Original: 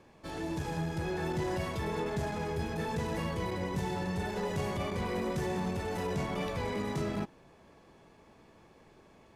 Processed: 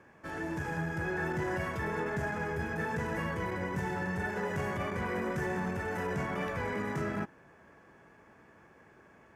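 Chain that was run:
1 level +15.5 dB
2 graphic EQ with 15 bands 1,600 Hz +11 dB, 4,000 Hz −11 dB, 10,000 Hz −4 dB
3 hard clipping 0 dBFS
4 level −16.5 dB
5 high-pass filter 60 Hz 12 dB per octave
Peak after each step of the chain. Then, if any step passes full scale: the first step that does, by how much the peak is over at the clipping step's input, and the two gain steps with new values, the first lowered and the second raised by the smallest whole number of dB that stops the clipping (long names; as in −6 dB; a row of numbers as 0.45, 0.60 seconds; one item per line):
−6.5, −5.0, −5.0, −21.5, −21.5 dBFS
no step passes full scale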